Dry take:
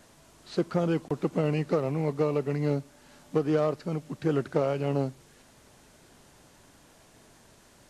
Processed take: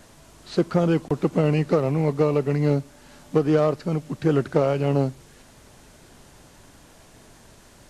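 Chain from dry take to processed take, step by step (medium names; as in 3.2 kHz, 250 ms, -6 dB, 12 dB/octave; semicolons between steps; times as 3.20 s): bass shelf 84 Hz +7 dB; trim +5.5 dB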